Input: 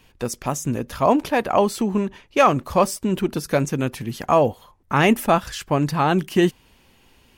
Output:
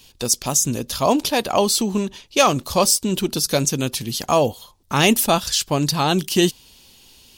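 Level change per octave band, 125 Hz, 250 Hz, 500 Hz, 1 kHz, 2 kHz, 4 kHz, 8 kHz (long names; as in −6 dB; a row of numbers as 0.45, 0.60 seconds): 0.0, 0.0, −0.5, −1.0, +0.5, +11.0, +13.5 decibels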